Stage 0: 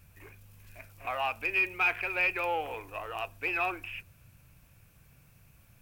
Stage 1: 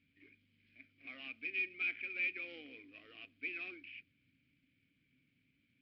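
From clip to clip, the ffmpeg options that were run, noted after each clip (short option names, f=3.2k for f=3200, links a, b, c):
-filter_complex "[0:a]aresample=11025,acrusher=bits=4:mode=log:mix=0:aa=0.000001,aresample=44100,asplit=3[a][b][c];[a]bandpass=f=270:t=q:w=8,volume=0dB[d];[b]bandpass=f=2.29k:t=q:w=8,volume=-6dB[e];[c]bandpass=f=3.01k:t=q:w=8,volume=-9dB[f];[d][e][f]amix=inputs=3:normalize=0,volume=1dB"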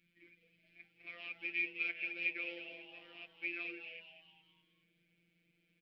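-filter_complex "[0:a]afftfilt=real='hypot(re,im)*cos(PI*b)':imag='0':win_size=1024:overlap=0.75,asplit=2[a][b];[b]asplit=5[c][d][e][f][g];[c]adelay=207,afreqshift=150,volume=-10.5dB[h];[d]adelay=414,afreqshift=300,volume=-17.6dB[i];[e]adelay=621,afreqshift=450,volume=-24.8dB[j];[f]adelay=828,afreqshift=600,volume=-31.9dB[k];[g]adelay=1035,afreqshift=750,volume=-39dB[l];[h][i][j][k][l]amix=inputs=5:normalize=0[m];[a][m]amix=inputs=2:normalize=0,volume=4.5dB"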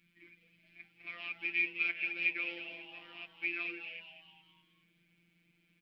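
-af "equalizer=f=250:t=o:w=1:g=3,equalizer=f=500:t=o:w=1:g=-8,equalizer=f=1k:t=o:w=1:g=6,volume=4dB"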